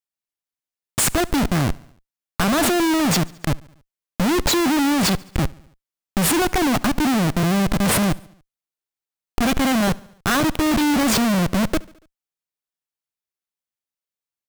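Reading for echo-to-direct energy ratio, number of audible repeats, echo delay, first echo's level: −21.5 dB, 3, 71 ms, −23.5 dB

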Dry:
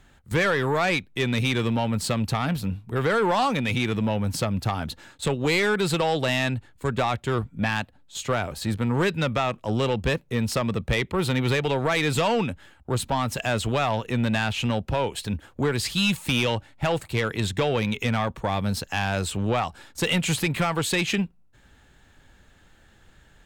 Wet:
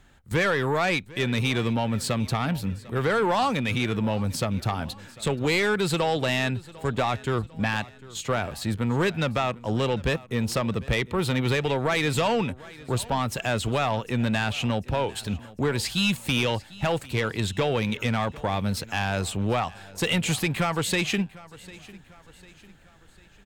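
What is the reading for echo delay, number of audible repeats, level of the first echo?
749 ms, 3, −20.5 dB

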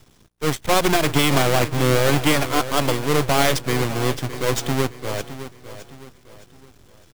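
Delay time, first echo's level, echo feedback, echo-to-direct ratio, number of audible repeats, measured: 613 ms, −13.0 dB, 39%, −12.5 dB, 3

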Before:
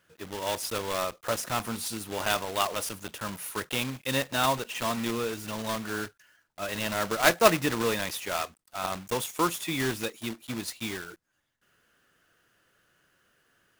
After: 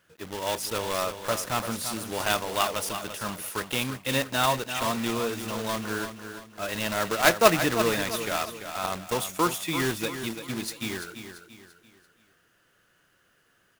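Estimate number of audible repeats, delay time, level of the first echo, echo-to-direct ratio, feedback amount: 4, 340 ms, −9.5 dB, −9.0 dB, 39%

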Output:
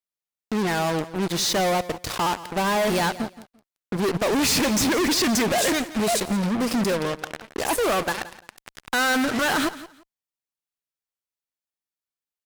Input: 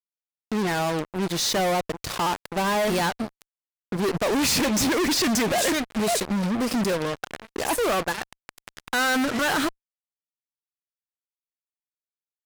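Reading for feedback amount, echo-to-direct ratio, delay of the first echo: 20%, −16.0 dB, 172 ms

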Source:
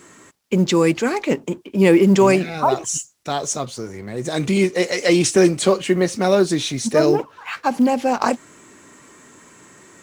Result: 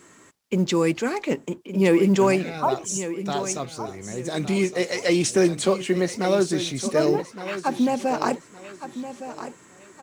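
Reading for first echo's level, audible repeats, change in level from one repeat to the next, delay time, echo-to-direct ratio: −12.0 dB, 3, −11.0 dB, 1,164 ms, −11.5 dB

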